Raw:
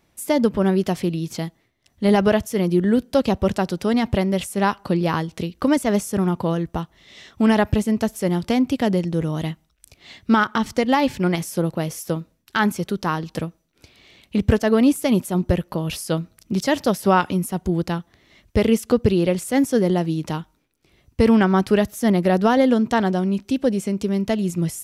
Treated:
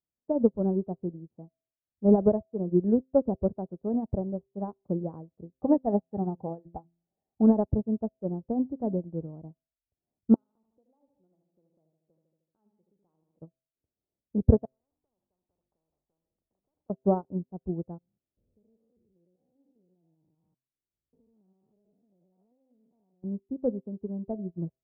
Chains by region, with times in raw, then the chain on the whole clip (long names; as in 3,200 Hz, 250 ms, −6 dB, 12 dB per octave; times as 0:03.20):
0:05.60–0:07.42: hum removal 169.8 Hz, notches 2 + hollow resonant body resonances 790/1,800 Hz, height 14 dB, ringing for 35 ms
0:10.34–0:13.42: low-shelf EQ 190 Hz −9.5 dB + feedback echo with a low-pass in the loop 76 ms, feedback 56%, low-pass 1,500 Hz, level −8 dB + downward compressor 3 to 1, threshold −36 dBFS
0:14.65–0:16.90: mains-hum notches 50/100/150/200/250/300/350 Hz + downward compressor 4 to 1, threshold −24 dBFS + every bin compressed towards the loudest bin 10 to 1
0:17.98–0:23.24: spectrum averaged block by block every 200 ms + downward compressor 4 to 1, threshold −35 dBFS
whole clip: inverse Chebyshev low-pass filter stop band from 2,500 Hz, stop band 60 dB; hum removal 130.5 Hz, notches 5; expander for the loud parts 2.5 to 1, over −36 dBFS